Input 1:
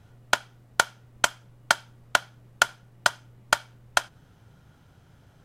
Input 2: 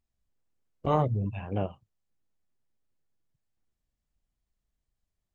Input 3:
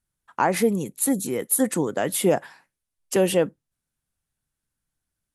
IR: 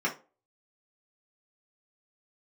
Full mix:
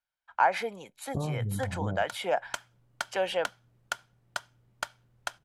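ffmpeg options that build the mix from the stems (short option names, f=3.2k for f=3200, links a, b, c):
-filter_complex "[0:a]adelay=1300,volume=-13dB,afade=t=in:st=2.04:d=0.56:silence=0.316228[a];[1:a]lowpass=f=1.1k:w=0.5412,lowpass=f=1.1k:w=1.3066,equalizer=f=140:w=0.46:g=12.5,acompressor=threshold=-23dB:ratio=6,adelay=300,volume=-6dB[b];[2:a]acrossover=split=530 4600:gain=0.0708 1 0.0708[c][d][e];[c][d][e]amix=inputs=3:normalize=0,aecho=1:1:1.3:0.43,volume=-2dB[f];[a][b][f]amix=inputs=3:normalize=0"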